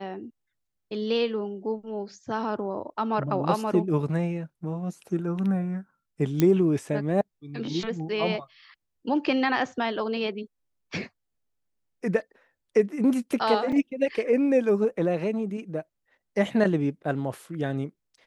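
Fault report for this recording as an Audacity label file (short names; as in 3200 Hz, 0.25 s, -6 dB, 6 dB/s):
6.400000	6.400000	pop -9 dBFS
13.720000	13.720000	gap 4.6 ms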